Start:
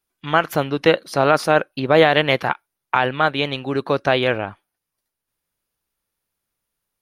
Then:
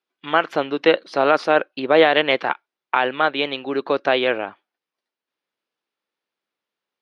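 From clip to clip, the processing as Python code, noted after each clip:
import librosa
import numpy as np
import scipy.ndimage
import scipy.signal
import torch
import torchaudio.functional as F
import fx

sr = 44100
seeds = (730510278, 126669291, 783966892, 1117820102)

y = scipy.signal.sosfilt(scipy.signal.cheby1(2, 1.0, [310.0, 3700.0], 'bandpass', fs=sr, output='sos'), x)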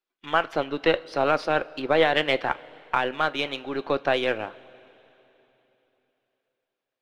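y = np.where(x < 0.0, 10.0 ** (-3.0 / 20.0) * x, x)
y = fx.rev_double_slope(y, sr, seeds[0], early_s=0.27, late_s=3.5, knee_db=-18, drr_db=12.5)
y = fx.hpss(y, sr, part='percussive', gain_db=4)
y = y * librosa.db_to_amplitude(-6.5)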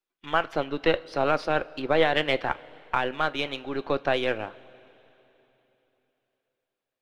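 y = fx.low_shelf(x, sr, hz=110.0, db=8.5)
y = y * librosa.db_to_amplitude(-2.0)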